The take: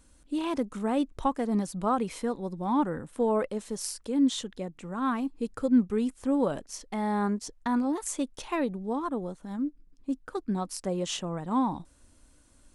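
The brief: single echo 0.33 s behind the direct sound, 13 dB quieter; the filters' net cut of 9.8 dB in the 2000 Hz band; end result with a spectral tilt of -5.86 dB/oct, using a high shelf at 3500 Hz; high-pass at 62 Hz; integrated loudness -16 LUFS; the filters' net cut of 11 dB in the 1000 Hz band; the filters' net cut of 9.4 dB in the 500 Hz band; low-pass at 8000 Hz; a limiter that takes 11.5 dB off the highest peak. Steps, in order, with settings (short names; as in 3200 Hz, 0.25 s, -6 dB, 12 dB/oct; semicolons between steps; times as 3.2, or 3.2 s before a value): HPF 62 Hz; LPF 8000 Hz; bell 500 Hz -9 dB; bell 1000 Hz -8.5 dB; bell 2000 Hz -7.5 dB; high shelf 3500 Hz -6 dB; limiter -27.5 dBFS; echo 0.33 s -13 dB; gain +21 dB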